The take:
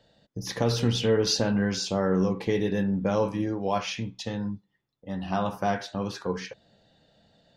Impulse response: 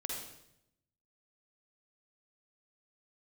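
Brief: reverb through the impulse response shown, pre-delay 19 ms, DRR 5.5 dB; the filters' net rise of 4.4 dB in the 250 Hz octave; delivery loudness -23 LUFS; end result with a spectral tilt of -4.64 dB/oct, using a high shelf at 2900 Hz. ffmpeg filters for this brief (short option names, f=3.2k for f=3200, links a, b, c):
-filter_complex "[0:a]equalizer=f=250:t=o:g=6,highshelf=f=2.9k:g=8.5,asplit=2[a][b];[1:a]atrim=start_sample=2205,adelay=19[c];[b][c]afir=irnorm=-1:irlink=0,volume=-6.5dB[d];[a][d]amix=inputs=2:normalize=0,volume=-0.5dB"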